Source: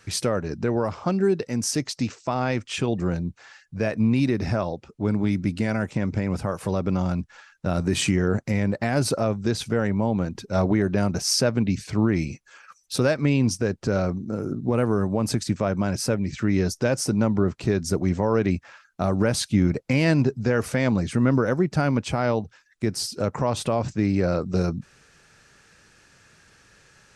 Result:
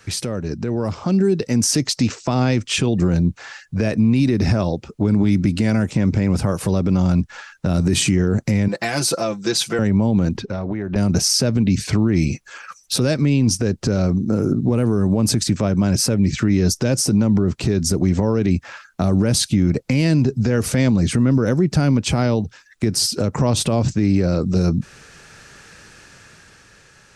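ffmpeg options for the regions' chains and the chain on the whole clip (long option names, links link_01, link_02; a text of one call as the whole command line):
ffmpeg -i in.wav -filter_complex "[0:a]asettb=1/sr,asplit=3[link_01][link_02][link_03];[link_01]atrim=end=8.684[link_04];[link_02]atrim=start=8.68:end=9.79,asetpts=PTS-STARTPTS,afade=type=in:duration=0.004:curve=qsin,afade=type=out:start_time=1.106:duration=0.004:curve=qsin,highpass=frequency=920:poles=1,aecho=1:1:5.9:0.78,atrim=end_sample=48951[link_05];[link_03]atrim=start=9.786[link_06];[link_04][link_05]acrossfade=duration=0.004:curve1=hsin:curve2=qsin[link_07];[link_07][link_06]acrossfade=duration=0.004:curve1=qsin:curve2=hsin,asettb=1/sr,asplit=3[link_08][link_09][link_10];[link_08]atrim=end=10.374[link_11];[link_09]atrim=start=10.37:end=10.96,asetpts=PTS-STARTPTS,afade=type=in:duration=0.004:curve=qsin,afade=type=out:start_time=0.586:duration=0.004:curve=qsin,lowpass=3900,acompressor=threshold=-31dB:ratio=12:attack=3.2:release=140:knee=1:detection=peak[link_12];[link_10]atrim=start=10.956[link_13];[link_11][link_12]acrossfade=duration=0.004:curve1=hsin:curve2=qsin[link_14];[link_14][link_13]acrossfade=duration=0.004:curve1=qsin:curve2=hsin,acrossover=split=390|3000[link_15][link_16][link_17];[link_16]acompressor=threshold=-42dB:ratio=2[link_18];[link_15][link_18][link_17]amix=inputs=3:normalize=0,alimiter=limit=-20dB:level=0:latency=1:release=55,dynaudnorm=framelen=120:gausssize=17:maxgain=6dB,volume=5.5dB" out.wav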